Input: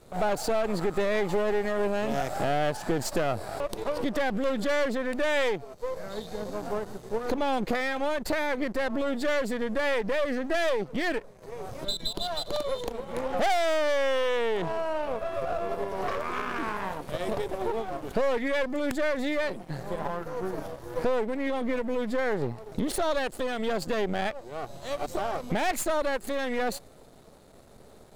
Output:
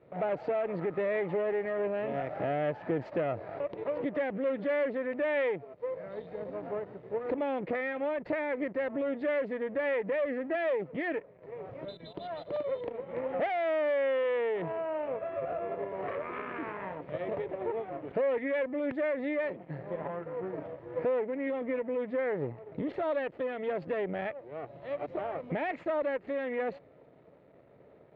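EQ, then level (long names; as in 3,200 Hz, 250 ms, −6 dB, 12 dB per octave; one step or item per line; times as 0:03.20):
loudspeaker in its box 150–2,100 Hz, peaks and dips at 220 Hz −10 dB, 380 Hz −4 dB, 790 Hz −8 dB, 1,500 Hz −9 dB
parametric band 1,100 Hz −8 dB 0.31 octaves
0.0 dB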